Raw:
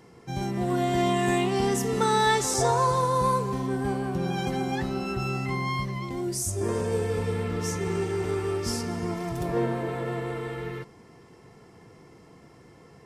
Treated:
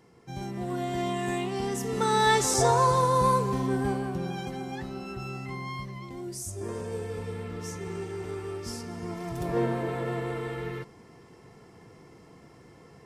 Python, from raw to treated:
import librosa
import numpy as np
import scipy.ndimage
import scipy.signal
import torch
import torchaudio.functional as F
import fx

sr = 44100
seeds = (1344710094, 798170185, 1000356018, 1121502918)

y = fx.gain(x, sr, db=fx.line((1.71, -6.0), (2.36, 1.0), (3.78, 1.0), (4.53, -7.5), (8.89, -7.5), (9.6, -0.5)))